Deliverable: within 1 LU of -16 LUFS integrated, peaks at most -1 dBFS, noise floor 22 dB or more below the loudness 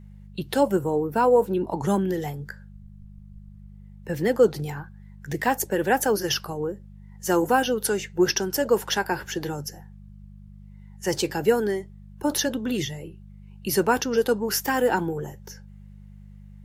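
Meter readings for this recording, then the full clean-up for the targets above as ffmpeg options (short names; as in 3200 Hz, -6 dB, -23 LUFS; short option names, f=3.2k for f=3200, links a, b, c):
hum 50 Hz; harmonics up to 200 Hz; hum level -42 dBFS; loudness -24.5 LUFS; peak -7.0 dBFS; loudness target -16.0 LUFS
-> -af "bandreject=f=50:t=h:w=4,bandreject=f=100:t=h:w=4,bandreject=f=150:t=h:w=4,bandreject=f=200:t=h:w=4"
-af "volume=8.5dB,alimiter=limit=-1dB:level=0:latency=1"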